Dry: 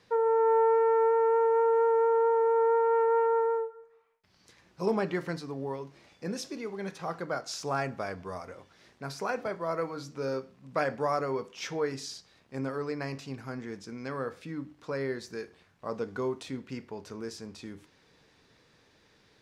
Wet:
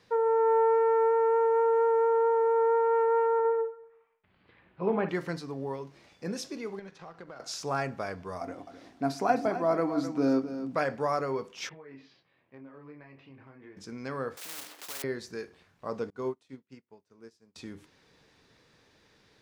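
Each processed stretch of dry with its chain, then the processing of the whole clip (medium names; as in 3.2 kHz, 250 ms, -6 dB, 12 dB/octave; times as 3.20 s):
3.39–5.09 s: inverse Chebyshev low-pass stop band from 5.9 kHz + flutter echo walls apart 9.8 m, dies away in 0.33 s
6.79–7.40 s: companding laws mixed up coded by A + low-pass 5.7 kHz + compression 8:1, threshold -41 dBFS
8.41–10.76 s: small resonant body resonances 280/700 Hz, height 16 dB, ringing for 50 ms + delay 259 ms -11.5 dB
11.69–13.77 s: cabinet simulation 140–2700 Hz, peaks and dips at 200 Hz -10 dB, 430 Hz -5 dB, 740 Hz -4 dB, 1.4 kHz -7 dB + compression 8:1, threshold -41 dBFS + detune thickener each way 10 cents
14.37–15.04 s: block-companded coder 3-bit + high-pass 400 Hz 24 dB/octave + spectrum-flattening compressor 4:1
16.10–17.56 s: high-pass 88 Hz + upward expansion 2.5:1, over -52 dBFS
whole clip: none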